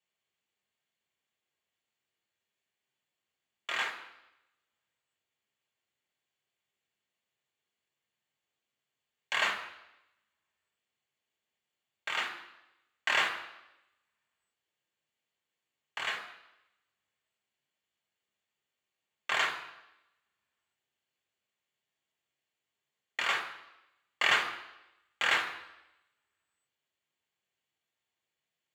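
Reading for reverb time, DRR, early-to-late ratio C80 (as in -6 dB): 0.90 s, 2.0 dB, 11.0 dB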